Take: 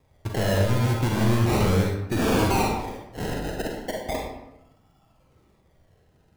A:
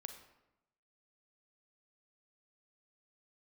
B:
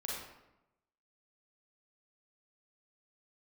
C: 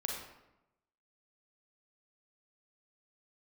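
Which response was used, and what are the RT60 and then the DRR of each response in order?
C; 0.90 s, 0.90 s, 0.90 s; 6.5 dB, -5.0 dB, -1.0 dB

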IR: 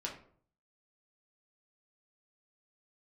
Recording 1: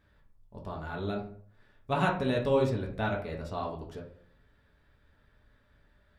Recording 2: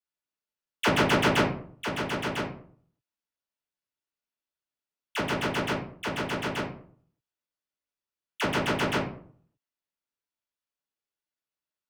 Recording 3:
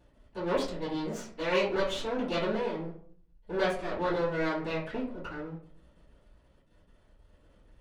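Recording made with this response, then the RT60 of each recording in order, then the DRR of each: 1; 0.55 s, 0.55 s, 0.55 s; -2.0 dB, -9.0 dB, -15.5 dB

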